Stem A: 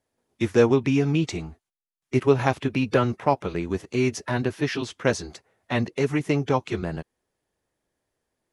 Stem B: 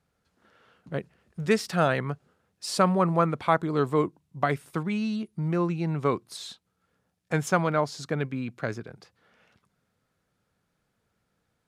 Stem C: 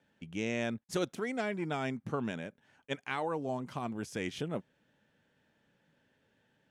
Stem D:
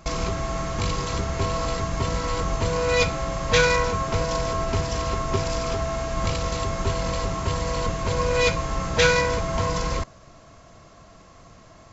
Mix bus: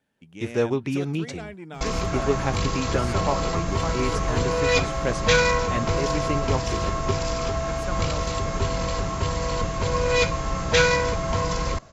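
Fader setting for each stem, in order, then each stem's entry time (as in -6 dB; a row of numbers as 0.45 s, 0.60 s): -5.0 dB, -11.5 dB, -4.0 dB, 0.0 dB; 0.00 s, 0.35 s, 0.00 s, 1.75 s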